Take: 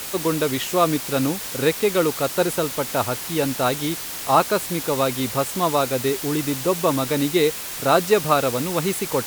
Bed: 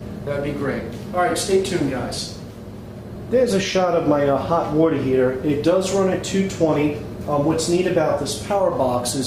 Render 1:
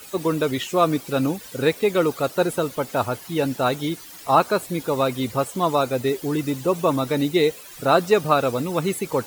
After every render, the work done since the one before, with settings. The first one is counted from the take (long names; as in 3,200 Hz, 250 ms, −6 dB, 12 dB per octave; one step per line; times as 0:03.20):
broadband denoise 14 dB, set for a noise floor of −32 dBFS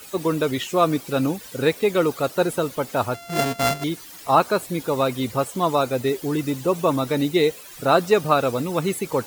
0:03.14–0:03.84: samples sorted by size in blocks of 64 samples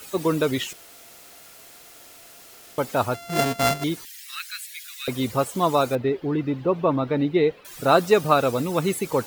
0:00.73–0:02.78: fill with room tone
0:04.05–0:05.08: Butterworth high-pass 1,700 Hz 48 dB per octave
0:05.95–0:07.65: high-frequency loss of the air 360 metres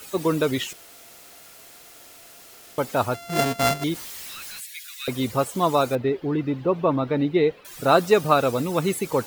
0:03.94–0:04.60: sign of each sample alone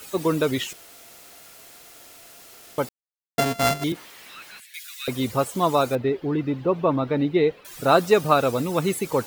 0:02.89–0:03.38: silence
0:03.92–0:04.74: three-way crossover with the lows and the highs turned down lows −13 dB, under 160 Hz, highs −12 dB, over 3,300 Hz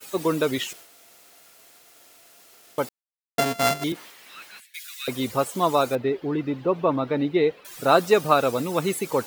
downward expander −41 dBFS
low-shelf EQ 110 Hz −11.5 dB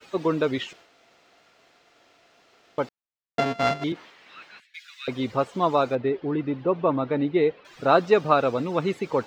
high-frequency loss of the air 180 metres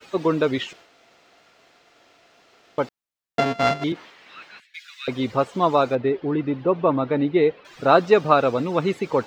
level +3 dB